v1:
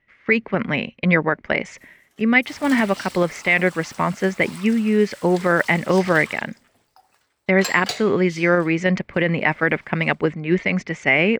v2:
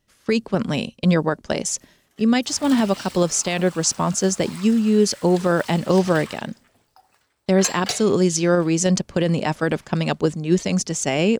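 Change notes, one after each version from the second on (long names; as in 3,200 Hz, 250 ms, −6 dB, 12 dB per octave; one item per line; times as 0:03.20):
speech: remove low-pass with resonance 2,100 Hz, resonance Q 6.6
master: add low-shelf EQ 190 Hz +3.5 dB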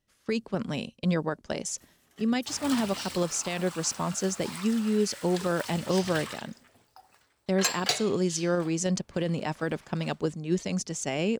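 speech −9.0 dB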